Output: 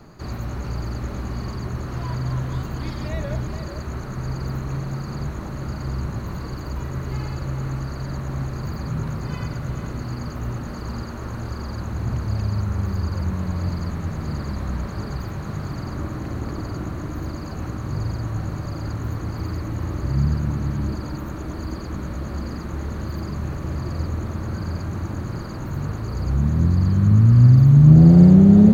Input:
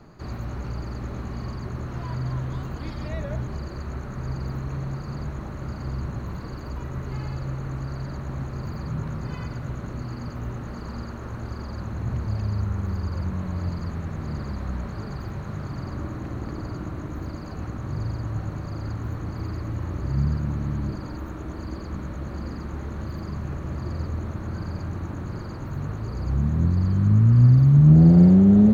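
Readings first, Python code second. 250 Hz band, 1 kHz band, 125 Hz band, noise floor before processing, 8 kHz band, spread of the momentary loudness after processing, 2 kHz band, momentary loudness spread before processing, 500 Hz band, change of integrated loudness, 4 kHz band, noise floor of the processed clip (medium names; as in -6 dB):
+3.0 dB, +3.5 dB, +3.5 dB, -35 dBFS, no reading, 16 LU, +4.0 dB, 16 LU, +3.5 dB, +3.5 dB, +6.0 dB, -32 dBFS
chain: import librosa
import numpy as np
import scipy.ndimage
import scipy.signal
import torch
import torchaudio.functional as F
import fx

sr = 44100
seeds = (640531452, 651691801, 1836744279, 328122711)

y = fx.high_shelf(x, sr, hz=5600.0, db=7.5)
y = y + 10.0 ** (-10.0 / 20.0) * np.pad(y, (int(438 * sr / 1000.0), 0))[:len(y)]
y = F.gain(torch.from_numpy(y), 3.0).numpy()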